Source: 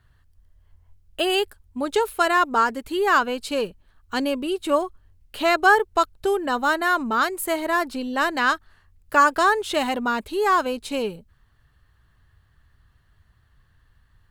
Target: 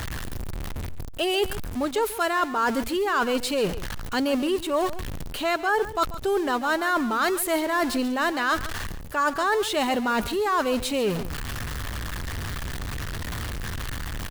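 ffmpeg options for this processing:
-af "aeval=exprs='val(0)+0.5*0.0316*sgn(val(0))':c=same,areverse,acompressor=threshold=0.0501:ratio=6,areverse,aecho=1:1:139:0.178,volume=1.68"

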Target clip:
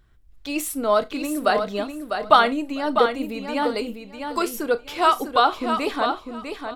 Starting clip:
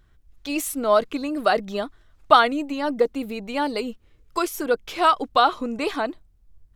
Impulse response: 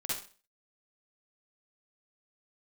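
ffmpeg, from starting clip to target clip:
-filter_complex "[0:a]equalizer=f=6300:w=7.9:g=-4,aecho=1:1:650|1300|1950:0.447|0.0849|0.0161,asplit=2[s0][s1];[1:a]atrim=start_sample=2205,asetrate=83790,aresample=44100[s2];[s1][s2]afir=irnorm=-1:irlink=0,volume=0.316[s3];[s0][s3]amix=inputs=2:normalize=0,volume=0.891"

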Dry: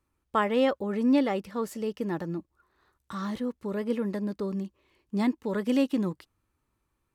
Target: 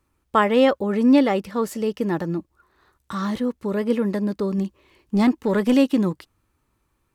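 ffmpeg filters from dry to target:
-filter_complex "[0:a]asettb=1/sr,asplit=3[s0][s1][s2];[s0]atrim=end=4.584[s3];[s1]atrim=start=4.58:end=5.74,asetpts=PTS-STARTPTS,afade=t=in:d=0.004:c=qsin,afade=t=out:st=1.156:d=0.004:c=qsin,aeval=exprs='0.158*(cos(1*acos(clip(val(0)/0.158,-1,1)))-cos(1*PI/2))+0.0112*(cos(5*acos(clip(val(0)/0.158,-1,1)))-cos(5*PI/2))':c=same[s4];[s2]atrim=start=5.736[s5];[s3][s4]acrossfade=d=0.004:c1=hsin:c2=qsin[s6];[s6][s5]acrossfade=d=0.004:c1=qsin:c2=hsin,volume=2.37"

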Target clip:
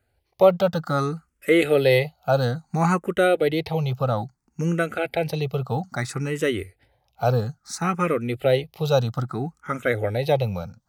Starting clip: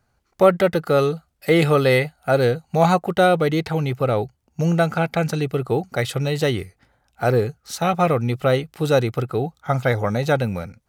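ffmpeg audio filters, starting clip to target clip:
-filter_complex "[0:a]asplit=2[s0][s1];[s1]afreqshift=0.6[s2];[s0][s2]amix=inputs=2:normalize=1"

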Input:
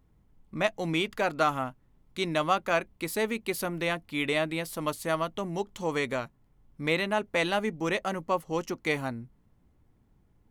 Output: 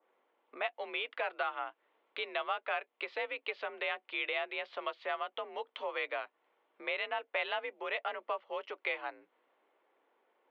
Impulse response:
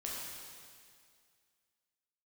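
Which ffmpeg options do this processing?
-af "acompressor=threshold=0.01:ratio=4,highpass=f=420:t=q:w=0.5412,highpass=f=420:t=q:w=1.307,lowpass=f=3300:t=q:w=0.5176,lowpass=f=3300:t=q:w=0.7071,lowpass=f=3300:t=q:w=1.932,afreqshift=51,adynamicequalizer=threshold=0.002:dfrequency=1800:dqfactor=0.7:tfrequency=1800:tqfactor=0.7:attack=5:release=100:ratio=0.375:range=2.5:mode=boostabove:tftype=highshelf,volume=1.78"

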